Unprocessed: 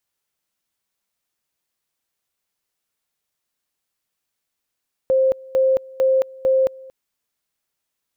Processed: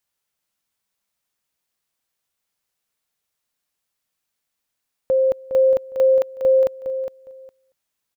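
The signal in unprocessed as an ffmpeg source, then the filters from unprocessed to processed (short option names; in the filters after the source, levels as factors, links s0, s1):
-f lavfi -i "aevalsrc='pow(10,(-13-23.5*gte(mod(t,0.45),0.22))/20)*sin(2*PI*527*t)':d=1.8:s=44100"
-filter_complex "[0:a]equalizer=f=360:t=o:w=0.43:g=-3.5,asplit=2[s0][s1];[s1]aecho=0:1:410|820:0.335|0.0569[s2];[s0][s2]amix=inputs=2:normalize=0"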